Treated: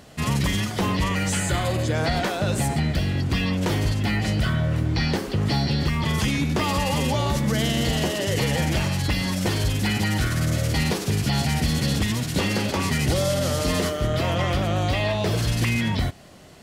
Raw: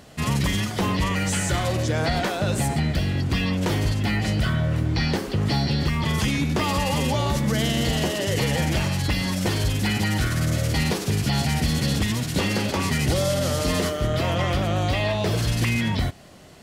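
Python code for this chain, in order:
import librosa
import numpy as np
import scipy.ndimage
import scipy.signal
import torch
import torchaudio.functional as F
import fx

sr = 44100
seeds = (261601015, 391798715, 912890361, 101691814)

y = fx.notch(x, sr, hz=5700.0, q=5.1, at=(1.4, 1.95))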